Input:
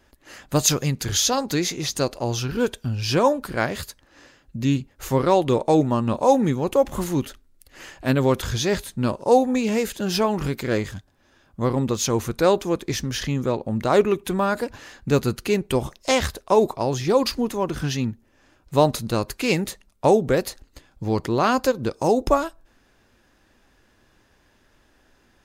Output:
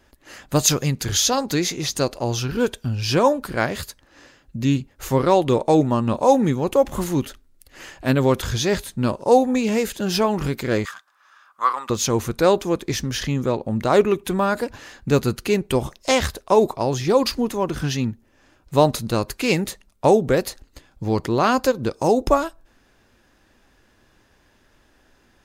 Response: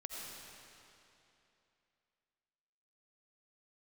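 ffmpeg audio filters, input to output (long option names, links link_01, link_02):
-filter_complex "[0:a]asettb=1/sr,asplit=3[link_01][link_02][link_03];[link_01]atrim=end=10.854[link_04];[link_02]atrim=start=10.85:end=11.9,asetpts=PTS-STARTPTS,afade=type=in:duration=0.004:curve=qsin,afade=type=out:start_time=1.046:duration=0.004:curve=qsin,highpass=frequency=1200:width_type=q:width=6.2[link_05];[link_03]atrim=start=11.896[link_06];[link_04][link_05]acrossfade=duration=0.004:curve1=hsin:curve2=qsin[link_07];[link_07][link_06]acrossfade=duration=0.004:curve1=qsin:curve2=hsin,volume=1.5dB"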